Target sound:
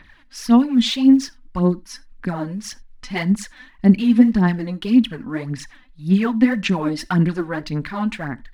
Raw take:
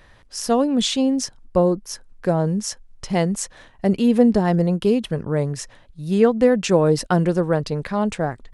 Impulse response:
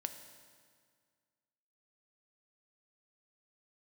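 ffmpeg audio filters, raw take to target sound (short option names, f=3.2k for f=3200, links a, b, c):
-filter_complex "[0:a]equalizer=f=125:t=o:w=1:g=-4,equalizer=f=250:t=o:w=1:g=12,equalizer=f=500:t=o:w=1:g=-12,equalizer=f=1k:t=o:w=1:g=3,equalizer=f=2k:t=o:w=1:g=9,equalizer=f=4k:t=o:w=1:g=5,equalizer=f=8k:t=o:w=1:g=-6,aphaser=in_gain=1:out_gain=1:delay=4:decay=0.68:speed=1.8:type=sinusoidal,asplit=2[a][b];[1:a]atrim=start_sample=2205,afade=t=out:st=0.14:d=0.01,atrim=end_sample=6615[c];[b][c]afir=irnorm=-1:irlink=0,volume=-4dB[d];[a][d]amix=inputs=2:normalize=0,volume=-10.5dB"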